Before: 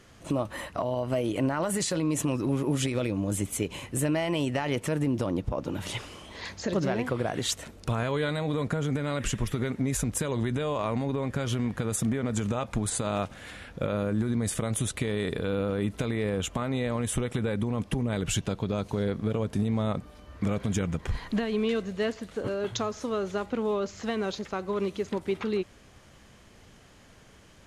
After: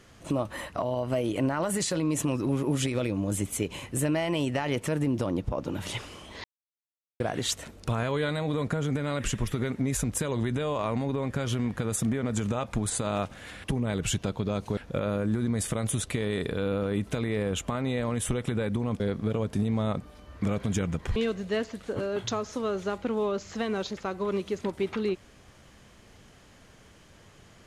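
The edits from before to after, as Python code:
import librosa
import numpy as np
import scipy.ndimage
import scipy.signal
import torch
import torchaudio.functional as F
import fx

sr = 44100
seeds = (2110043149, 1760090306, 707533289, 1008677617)

y = fx.edit(x, sr, fx.silence(start_s=6.44, length_s=0.76),
    fx.move(start_s=17.87, length_s=1.13, to_s=13.64),
    fx.cut(start_s=21.16, length_s=0.48), tone=tone)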